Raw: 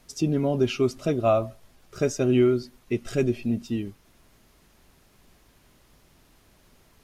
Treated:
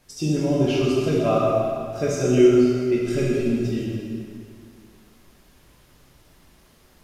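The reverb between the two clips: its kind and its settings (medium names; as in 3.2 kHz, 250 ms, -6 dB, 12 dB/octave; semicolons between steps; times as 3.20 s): plate-style reverb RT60 2.3 s, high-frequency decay 0.85×, DRR -6 dB; trim -3 dB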